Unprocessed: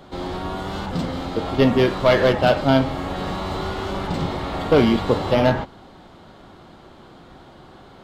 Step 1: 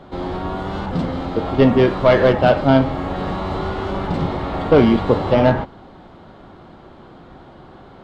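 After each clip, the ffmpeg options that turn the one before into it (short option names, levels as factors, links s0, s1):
-af "lowpass=f=1900:p=1,volume=1.5"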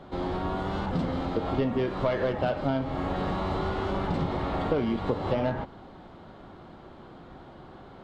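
-af "acompressor=threshold=0.126:ratio=10,volume=0.562"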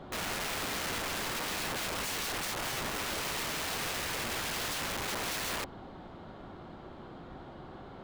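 -af "aeval=exprs='(mod(33.5*val(0)+1,2)-1)/33.5':c=same"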